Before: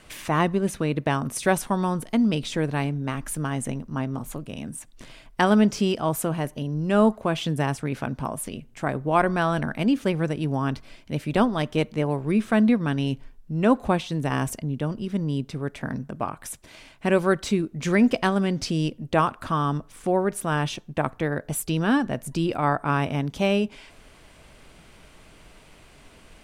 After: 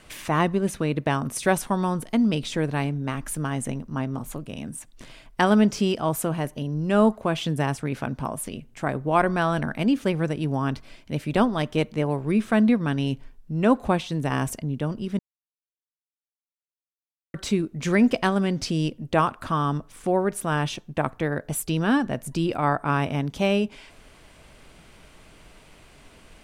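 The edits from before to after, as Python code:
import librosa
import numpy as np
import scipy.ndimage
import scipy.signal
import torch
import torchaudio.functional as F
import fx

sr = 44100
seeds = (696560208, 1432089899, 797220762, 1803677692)

y = fx.edit(x, sr, fx.silence(start_s=15.19, length_s=2.15), tone=tone)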